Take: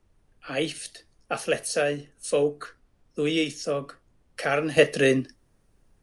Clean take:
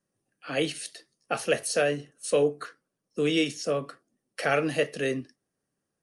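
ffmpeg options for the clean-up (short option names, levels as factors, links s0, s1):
-af "agate=range=0.0891:threshold=0.00141,asetnsamples=n=441:p=0,asendcmd='4.77 volume volume -8dB',volume=1"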